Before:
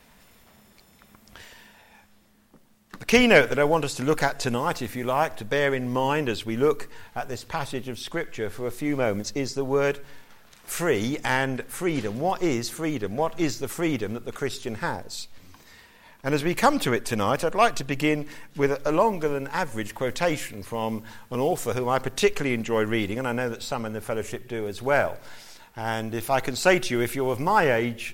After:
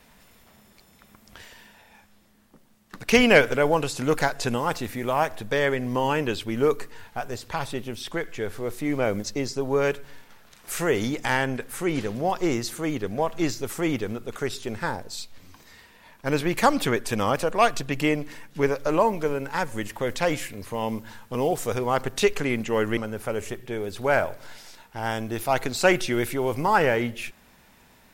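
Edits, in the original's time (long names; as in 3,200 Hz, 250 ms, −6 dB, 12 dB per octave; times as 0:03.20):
0:22.97–0:23.79: remove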